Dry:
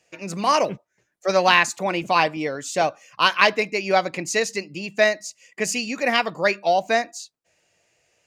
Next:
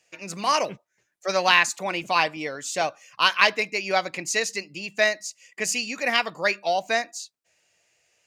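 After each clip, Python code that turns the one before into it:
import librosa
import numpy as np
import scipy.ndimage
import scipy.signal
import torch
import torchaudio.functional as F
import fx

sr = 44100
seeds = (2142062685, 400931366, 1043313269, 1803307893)

y = fx.tilt_shelf(x, sr, db=-4.0, hz=940.0)
y = y * librosa.db_to_amplitude(-3.5)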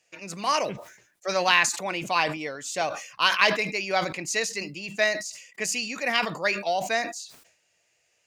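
y = fx.sustainer(x, sr, db_per_s=87.0)
y = y * librosa.db_to_amplitude(-2.5)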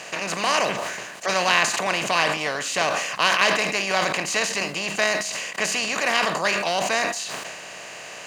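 y = fx.bin_compress(x, sr, power=0.4)
y = y * librosa.db_to_amplitude(-3.0)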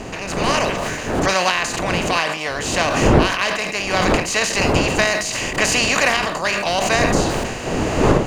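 y = fx.dmg_wind(x, sr, seeds[0], corner_hz=530.0, level_db=-24.0)
y = fx.recorder_agc(y, sr, target_db=-2.5, rise_db_per_s=7.3, max_gain_db=30)
y = y * librosa.db_to_amplitude(-2.5)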